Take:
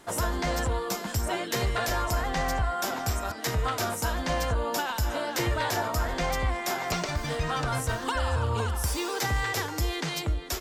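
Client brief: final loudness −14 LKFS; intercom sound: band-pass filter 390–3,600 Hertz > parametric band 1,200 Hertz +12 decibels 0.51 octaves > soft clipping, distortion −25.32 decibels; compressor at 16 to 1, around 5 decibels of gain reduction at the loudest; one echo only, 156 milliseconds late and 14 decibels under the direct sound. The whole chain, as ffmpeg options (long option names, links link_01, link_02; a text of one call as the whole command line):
ffmpeg -i in.wav -af "acompressor=threshold=-27dB:ratio=16,highpass=390,lowpass=3600,equalizer=frequency=1200:width_type=o:width=0.51:gain=12,aecho=1:1:156:0.2,asoftclip=threshold=-17.5dB,volume=16.5dB" out.wav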